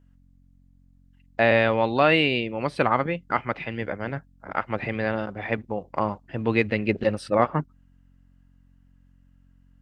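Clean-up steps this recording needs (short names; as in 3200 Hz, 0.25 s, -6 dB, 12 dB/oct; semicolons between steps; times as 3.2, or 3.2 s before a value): de-hum 45.2 Hz, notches 6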